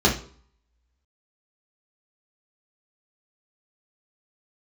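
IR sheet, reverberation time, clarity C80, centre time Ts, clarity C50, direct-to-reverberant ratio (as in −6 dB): 0.50 s, 15.5 dB, 21 ms, 9.5 dB, −4.5 dB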